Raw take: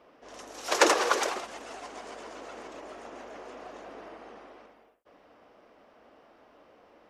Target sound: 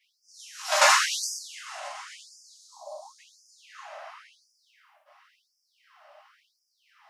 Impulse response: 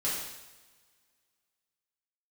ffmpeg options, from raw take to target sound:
-filter_complex "[0:a]asplit=3[link_01][link_02][link_03];[link_01]afade=type=out:start_time=2.42:duration=0.02[link_04];[link_02]asuperstop=centerf=2000:order=12:qfactor=0.66,afade=type=in:start_time=2.42:duration=0.02,afade=type=out:start_time=3.18:duration=0.02[link_05];[link_03]afade=type=in:start_time=3.18:duration=0.02[link_06];[link_04][link_05][link_06]amix=inputs=3:normalize=0[link_07];[1:a]atrim=start_sample=2205,atrim=end_sample=6615[link_08];[link_07][link_08]afir=irnorm=-1:irlink=0,afftfilt=real='re*gte(b*sr/1024,530*pow(4800/530,0.5+0.5*sin(2*PI*0.94*pts/sr)))':imag='im*gte(b*sr/1024,530*pow(4800/530,0.5+0.5*sin(2*PI*0.94*pts/sr)))':win_size=1024:overlap=0.75"

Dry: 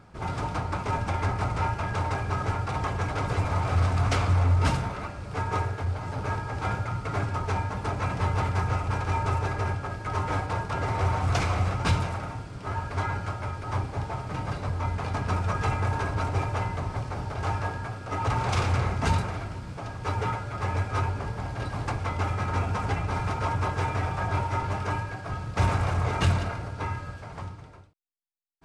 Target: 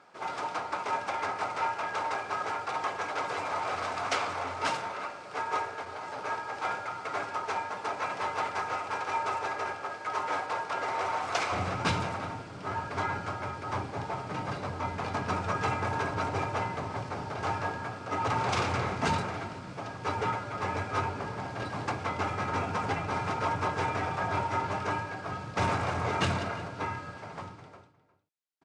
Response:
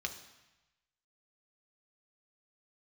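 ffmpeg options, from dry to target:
-filter_complex "[0:a]asetnsamples=nb_out_samples=441:pad=0,asendcmd='11.52 highpass f 170',highpass=480,lowpass=8000,asplit=2[link_01][link_02];[link_02]adelay=355.7,volume=-16dB,highshelf=frequency=4000:gain=-8[link_03];[link_01][link_03]amix=inputs=2:normalize=0"

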